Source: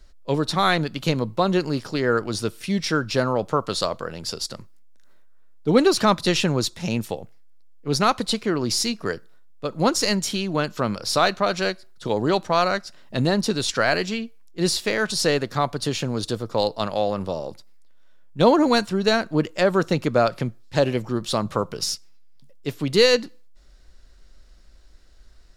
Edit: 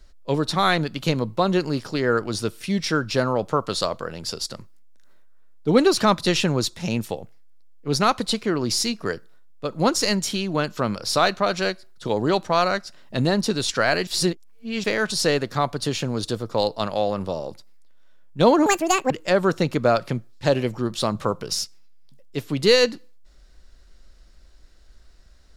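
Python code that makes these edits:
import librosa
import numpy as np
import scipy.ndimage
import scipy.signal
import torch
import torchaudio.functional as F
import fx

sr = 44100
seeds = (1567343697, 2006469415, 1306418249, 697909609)

y = fx.edit(x, sr, fx.reverse_span(start_s=14.07, length_s=0.77),
    fx.speed_span(start_s=18.66, length_s=0.75, speed=1.69), tone=tone)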